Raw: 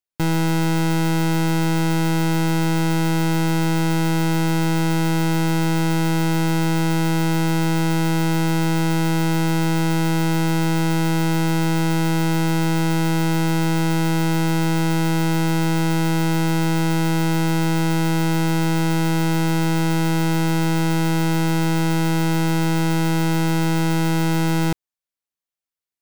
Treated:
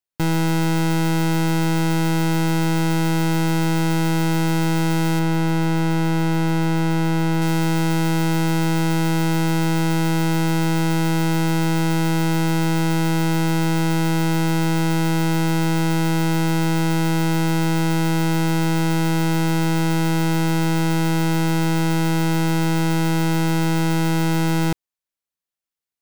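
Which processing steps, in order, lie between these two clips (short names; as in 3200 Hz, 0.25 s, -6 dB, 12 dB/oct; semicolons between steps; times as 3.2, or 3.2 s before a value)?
5.19–7.42 high shelf 3900 Hz -7 dB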